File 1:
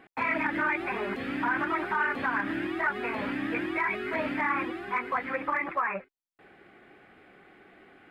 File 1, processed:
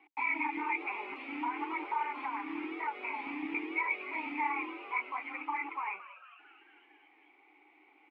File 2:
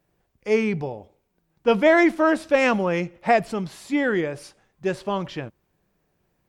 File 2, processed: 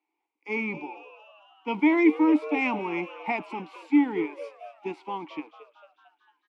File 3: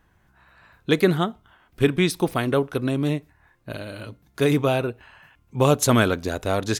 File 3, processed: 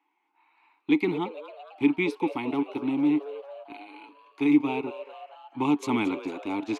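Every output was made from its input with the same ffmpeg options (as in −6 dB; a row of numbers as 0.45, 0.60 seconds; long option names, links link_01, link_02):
-filter_complex "[0:a]tiltshelf=frequency=970:gain=-3.5,acrossover=split=370|1200[link_01][link_02][link_03];[link_01]acrusher=bits=4:mix=0:aa=0.5[link_04];[link_04][link_02][link_03]amix=inputs=3:normalize=0,asplit=3[link_05][link_06][link_07];[link_05]bandpass=frequency=300:width_type=q:width=8,volume=0dB[link_08];[link_06]bandpass=frequency=870:width_type=q:width=8,volume=-6dB[link_09];[link_07]bandpass=frequency=2240:width_type=q:width=8,volume=-9dB[link_10];[link_08][link_09][link_10]amix=inputs=3:normalize=0,asplit=7[link_11][link_12][link_13][link_14][link_15][link_16][link_17];[link_12]adelay=225,afreqshift=140,volume=-15.5dB[link_18];[link_13]adelay=450,afreqshift=280,volume=-20.4dB[link_19];[link_14]adelay=675,afreqshift=420,volume=-25.3dB[link_20];[link_15]adelay=900,afreqshift=560,volume=-30.1dB[link_21];[link_16]adelay=1125,afreqshift=700,volume=-35dB[link_22];[link_17]adelay=1350,afreqshift=840,volume=-39.9dB[link_23];[link_11][link_18][link_19][link_20][link_21][link_22][link_23]amix=inputs=7:normalize=0,volume=7.5dB"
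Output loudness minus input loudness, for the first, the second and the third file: −6.0, −4.0, −4.5 LU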